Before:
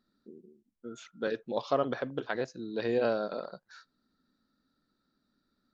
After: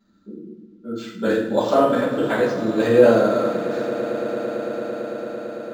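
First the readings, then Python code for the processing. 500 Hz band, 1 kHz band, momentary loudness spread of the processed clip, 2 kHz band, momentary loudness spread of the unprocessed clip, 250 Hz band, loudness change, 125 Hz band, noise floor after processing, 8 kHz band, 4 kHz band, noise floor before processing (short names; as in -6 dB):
+15.0 dB, +13.0 dB, 18 LU, +12.5 dB, 17 LU, +16.5 dB, +12.5 dB, +14.5 dB, -50 dBFS, n/a, +10.5 dB, -80 dBFS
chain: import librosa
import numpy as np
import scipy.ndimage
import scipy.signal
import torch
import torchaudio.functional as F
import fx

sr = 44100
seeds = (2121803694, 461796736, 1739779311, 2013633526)

y = fx.echo_swell(x, sr, ms=112, loudest=8, wet_db=-18)
y = fx.rev_fdn(y, sr, rt60_s=0.72, lf_ratio=1.6, hf_ratio=0.85, size_ms=30.0, drr_db=-9.5)
y = np.interp(np.arange(len(y)), np.arange(len(y))[::4], y[::4])
y = F.gain(torch.from_numpy(y), 3.0).numpy()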